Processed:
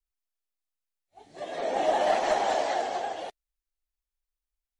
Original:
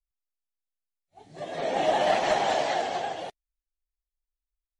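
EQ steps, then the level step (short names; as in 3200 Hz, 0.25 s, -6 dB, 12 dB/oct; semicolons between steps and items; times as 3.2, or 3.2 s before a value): dynamic EQ 2900 Hz, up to -5 dB, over -42 dBFS, Q 0.9; bell 140 Hz -14 dB 0.86 oct; 0.0 dB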